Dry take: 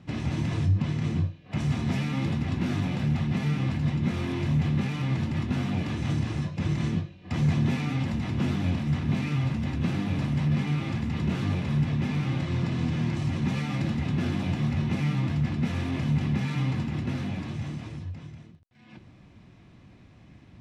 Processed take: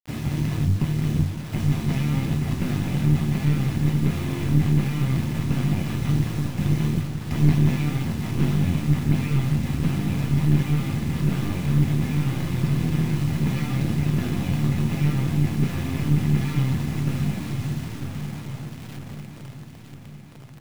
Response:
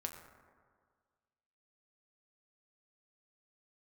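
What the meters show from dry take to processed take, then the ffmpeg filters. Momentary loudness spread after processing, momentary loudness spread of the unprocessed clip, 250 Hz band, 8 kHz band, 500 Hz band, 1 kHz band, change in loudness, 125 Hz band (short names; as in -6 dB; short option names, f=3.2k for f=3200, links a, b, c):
11 LU, 5 LU, +4.0 dB, n/a, +3.5 dB, +1.5 dB, +4.5 dB, +5.0 dB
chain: -filter_complex "[0:a]adynamicequalizer=threshold=0.01:dfrequency=150:dqfactor=3.7:tfrequency=150:tqfactor=3.7:attack=5:release=100:ratio=0.375:range=3:mode=boostabove:tftype=bell,asplit=2[a][b];[b]adelay=560,lowpass=f=1.1k:p=1,volume=-12dB,asplit=2[c][d];[d]adelay=560,lowpass=f=1.1k:p=1,volume=0.5,asplit=2[e][f];[f]adelay=560,lowpass=f=1.1k:p=1,volume=0.5,asplit=2[g][h];[h]adelay=560,lowpass=f=1.1k:p=1,volume=0.5,asplit=2[i][j];[j]adelay=560,lowpass=f=1.1k:p=1,volume=0.5[k];[c][e][g][i][k]amix=inputs=5:normalize=0[l];[a][l]amix=inputs=2:normalize=0,aeval=exprs='0.316*(cos(1*acos(clip(val(0)/0.316,-1,1)))-cos(1*PI/2))+0.126*(cos(2*acos(clip(val(0)/0.316,-1,1)))-cos(2*PI/2))':c=same,acrusher=bits=6:mix=0:aa=0.000001,asplit=2[m][n];[n]aecho=0:1:952|1904|2856|3808|4760|5712:0.355|0.195|0.107|0.059|0.0325|0.0179[o];[m][o]amix=inputs=2:normalize=0"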